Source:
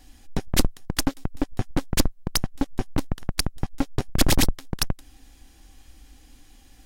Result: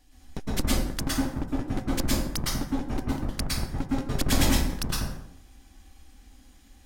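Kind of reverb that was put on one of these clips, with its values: plate-style reverb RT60 0.77 s, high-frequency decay 0.6×, pre-delay 100 ms, DRR -7 dB; trim -9.5 dB

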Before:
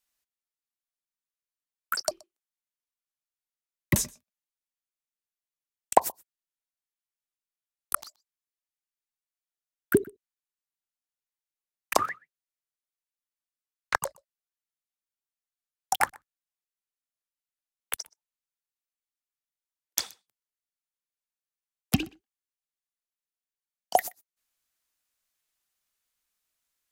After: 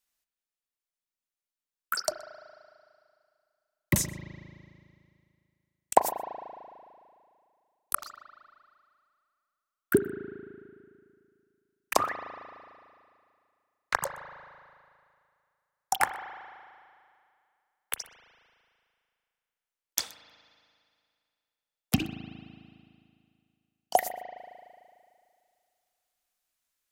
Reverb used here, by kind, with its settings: spring tank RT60 2.3 s, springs 37 ms, chirp 30 ms, DRR 9 dB; trim -1 dB

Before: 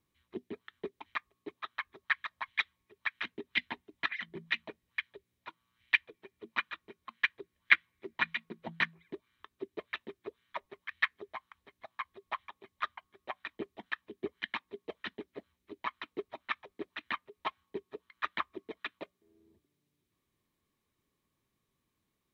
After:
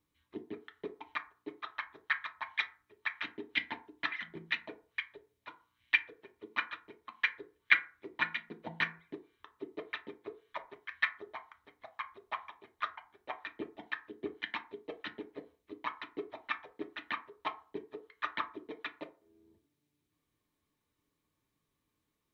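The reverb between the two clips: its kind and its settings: FDN reverb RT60 0.39 s, low-frequency decay 0.75×, high-frequency decay 0.45×, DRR 5 dB; trim -2 dB

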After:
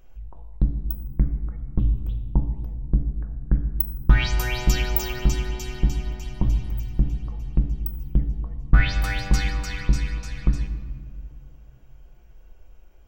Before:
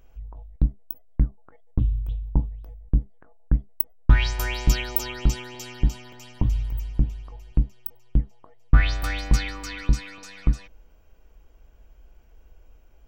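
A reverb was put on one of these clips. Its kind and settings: simulated room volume 2500 m³, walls mixed, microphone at 0.97 m

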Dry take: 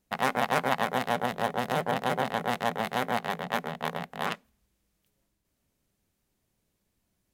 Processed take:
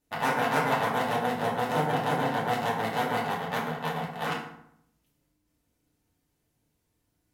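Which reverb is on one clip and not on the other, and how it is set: FDN reverb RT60 0.72 s, low-frequency decay 1.25×, high-frequency decay 0.65×, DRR -5.5 dB; trim -5.5 dB

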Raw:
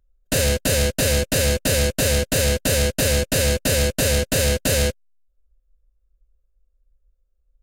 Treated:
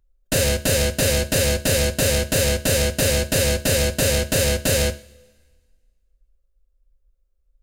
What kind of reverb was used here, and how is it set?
two-slope reverb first 0.4 s, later 1.7 s, from -20 dB, DRR 10 dB

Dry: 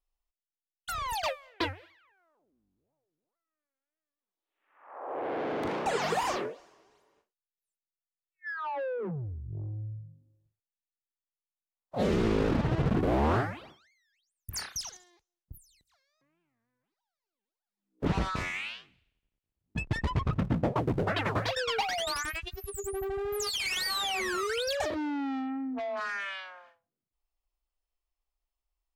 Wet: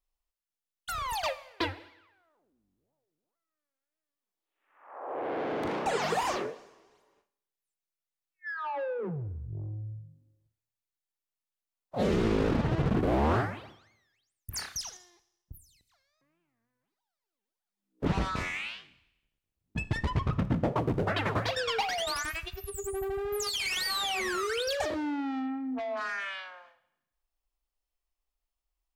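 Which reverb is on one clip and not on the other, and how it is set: Schroeder reverb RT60 0.87 s, combs from 27 ms, DRR 15.5 dB

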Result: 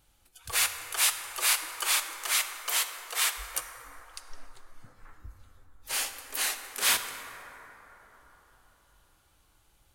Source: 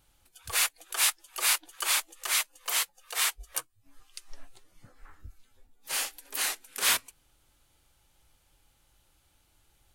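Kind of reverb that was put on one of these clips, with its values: plate-style reverb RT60 4.5 s, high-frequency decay 0.3×, DRR 6.5 dB

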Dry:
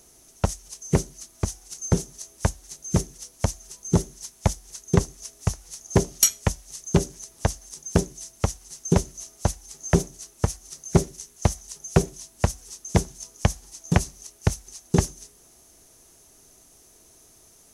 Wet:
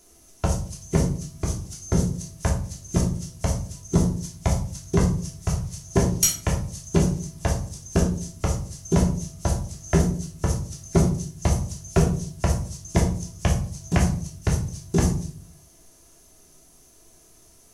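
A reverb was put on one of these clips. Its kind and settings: simulated room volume 490 m³, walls furnished, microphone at 3.1 m; trim -4.5 dB

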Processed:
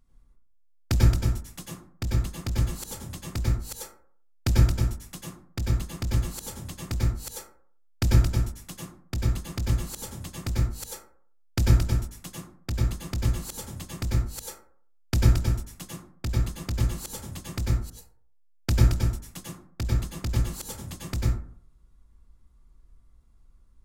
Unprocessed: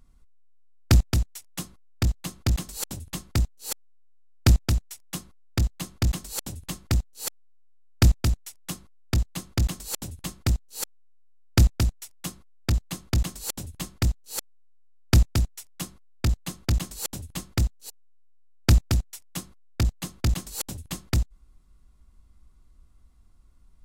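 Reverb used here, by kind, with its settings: plate-style reverb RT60 0.54 s, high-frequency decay 0.4×, pre-delay 85 ms, DRR -4 dB; trim -7.5 dB

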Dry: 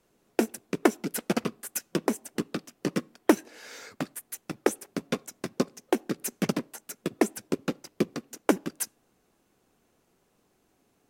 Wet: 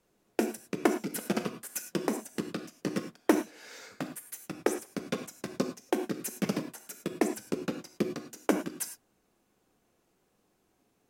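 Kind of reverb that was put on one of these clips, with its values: gated-style reverb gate 130 ms flat, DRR 6.5 dB; trim -4 dB

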